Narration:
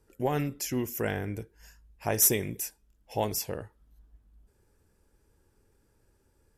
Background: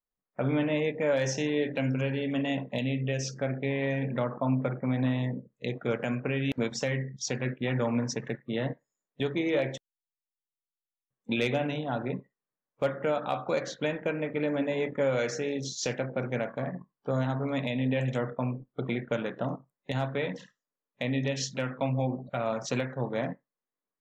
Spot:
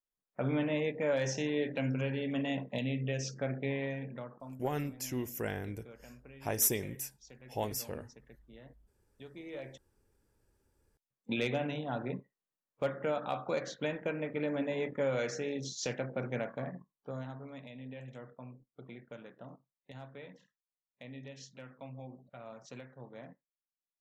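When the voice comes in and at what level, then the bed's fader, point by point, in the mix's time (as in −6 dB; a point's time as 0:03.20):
4.40 s, −6.0 dB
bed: 0:03.73 −4.5 dB
0:04.68 −23.5 dB
0:09.01 −23.5 dB
0:10.44 −5 dB
0:16.55 −5 dB
0:17.63 −18 dB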